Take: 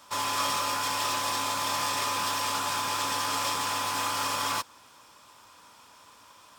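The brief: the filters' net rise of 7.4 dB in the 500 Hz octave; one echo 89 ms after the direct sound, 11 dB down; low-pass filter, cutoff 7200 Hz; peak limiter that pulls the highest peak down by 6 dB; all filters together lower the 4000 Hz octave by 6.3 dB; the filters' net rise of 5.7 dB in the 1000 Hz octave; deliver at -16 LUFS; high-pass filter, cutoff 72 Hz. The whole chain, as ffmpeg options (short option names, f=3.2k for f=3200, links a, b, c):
-af "highpass=72,lowpass=7.2k,equalizer=f=500:t=o:g=7.5,equalizer=f=1k:t=o:g=5,equalizer=f=4k:t=o:g=-8.5,alimiter=limit=-20dB:level=0:latency=1,aecho=1:1:89:0.282,volume=12.5dB"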